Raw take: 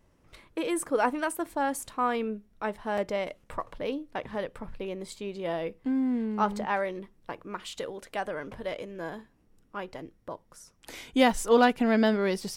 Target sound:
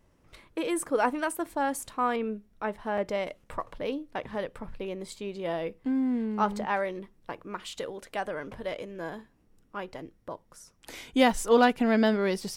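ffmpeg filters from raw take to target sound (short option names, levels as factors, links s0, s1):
-filter_complex "[0:a]asettb=1/sr,asplit=3[s0][s1][s2];[s0]atrim=end=2.164[s3];[s1]atrim=start=2.16:end=3.06,asetpts=PTS-STARTPTS,afade=t=in:d=0.004:c=qsin,afade=t=out:st=0.896:d=0.004:c=qsin,acrossover=split=3100[s4][s5];[s5]acompressor=threshold=0.00112:ratio=4:attack=1:release=60[s6];[s4][s6]amix=inputs=2:normalize=0[s7];[s2]atrim=start=3.056[s8];[s3][s7]acrossfade=d=0.004:c1=hsin:c2=qsin[s9];[s9][s8]acrossfade=d=0.004:c1=qsin:c2=hsin"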